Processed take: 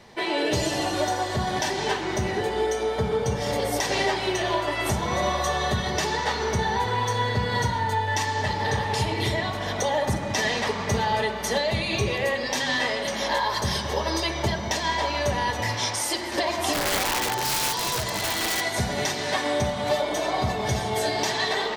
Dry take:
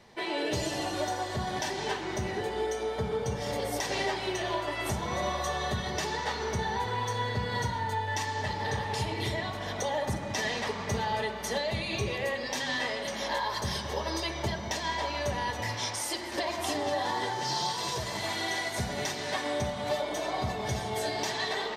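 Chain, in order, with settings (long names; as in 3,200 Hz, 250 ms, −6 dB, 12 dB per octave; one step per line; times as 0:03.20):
0:16.73–0:18.61: wrap-around overflow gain 25.5 dB
level +6.5 dB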